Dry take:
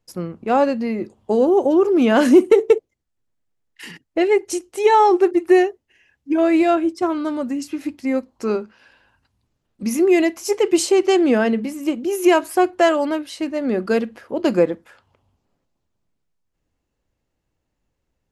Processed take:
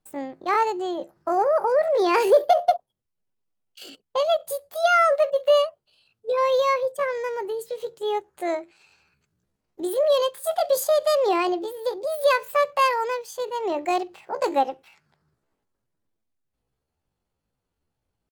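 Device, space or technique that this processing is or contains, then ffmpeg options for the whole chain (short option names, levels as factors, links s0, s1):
chipmunk voice: -af "asetrate=70004,aresample=44100,atempo=0.629961,volume=0.562"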